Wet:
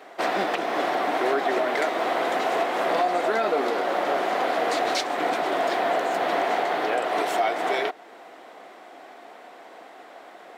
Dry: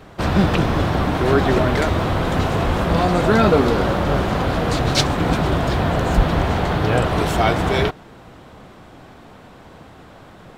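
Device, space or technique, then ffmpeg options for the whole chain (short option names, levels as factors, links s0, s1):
laptop speaker: -af "highpass=f=320:w=0.5412,highpass=f=320:w=1.3066,equalizer=f=710:t=o:w=0.3:g=8.5,equalizer=f=2000:t=o:w=0.43:g=6,alimiter=limit=0.282:level=0:latency=1:release=299,volume=0.708"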